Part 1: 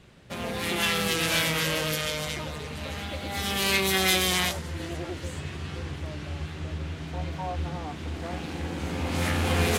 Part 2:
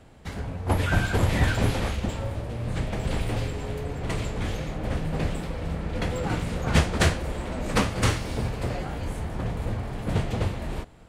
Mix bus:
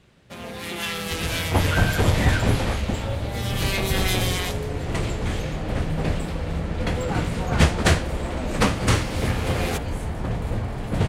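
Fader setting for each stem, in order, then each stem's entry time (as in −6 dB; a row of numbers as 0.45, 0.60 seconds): −3.0, +3.0 decibels; 0.00, 0.85 seconds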